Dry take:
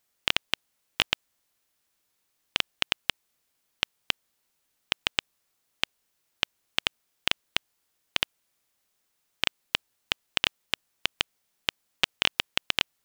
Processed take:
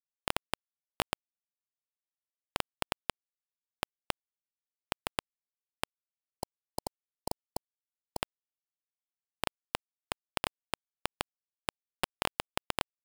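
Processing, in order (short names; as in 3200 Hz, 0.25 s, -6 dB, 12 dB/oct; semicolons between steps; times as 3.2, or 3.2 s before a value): median filter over 15 samples; spectral gain 6.11–8.2, 1000–4100 Hz -28 dB; sample gate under -58.5 dBFS; gain +14.5 dB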